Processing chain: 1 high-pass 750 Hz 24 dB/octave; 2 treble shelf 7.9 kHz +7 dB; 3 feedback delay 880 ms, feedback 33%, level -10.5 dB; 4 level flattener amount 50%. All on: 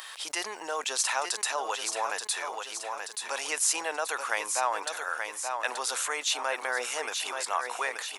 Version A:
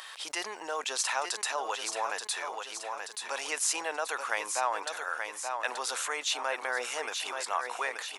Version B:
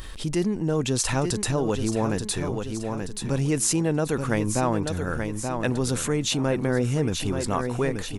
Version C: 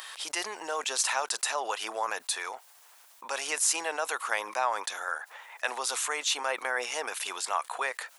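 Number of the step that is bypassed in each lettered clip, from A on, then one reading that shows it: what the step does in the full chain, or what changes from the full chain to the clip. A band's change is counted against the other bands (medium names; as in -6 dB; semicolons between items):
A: 2, 8 kHz band -2.0 dB; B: 1, 250 Hz band +27.0 dB; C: 3, momentary loudness spread change +1 LU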